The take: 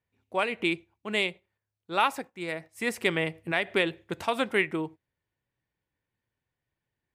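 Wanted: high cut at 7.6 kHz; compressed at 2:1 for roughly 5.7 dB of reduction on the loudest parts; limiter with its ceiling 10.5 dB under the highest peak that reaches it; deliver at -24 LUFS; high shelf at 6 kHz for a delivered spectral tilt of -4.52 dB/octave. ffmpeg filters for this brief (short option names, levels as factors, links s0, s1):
-af "lowpass=7600,highshelf=f=6000:g=5,acompressor=threshold=0.0316:ratio=2,volume=5.01,alimiter=limit=0.251:level=0:latency=1"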